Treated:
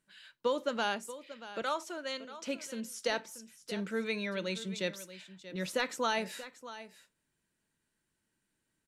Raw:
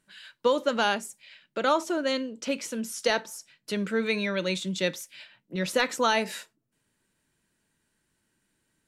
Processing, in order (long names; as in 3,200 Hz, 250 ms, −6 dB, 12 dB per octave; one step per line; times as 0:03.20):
0:01.62–0:02.41: high-pass filter 770 Hz 6 dB per octave
single-tap delay 633 ms −14.5 dB
level −7.5 dB